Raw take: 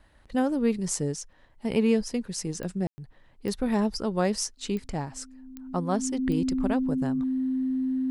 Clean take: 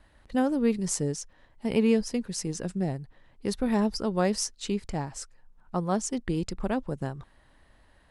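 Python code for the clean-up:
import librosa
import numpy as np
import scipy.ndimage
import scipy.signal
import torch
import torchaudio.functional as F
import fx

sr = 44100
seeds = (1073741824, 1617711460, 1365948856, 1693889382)

y = fx.fix_declick_ar(x, sr, threshold=10.0)
y = fx.notch(y, sr, hz=260.0, q=30.0)
y = fx.fix_ambience(y, sr, seeds[0], print_start_s=1.14, print_end_s=1.64, start_s=2.87, end_s=2.98)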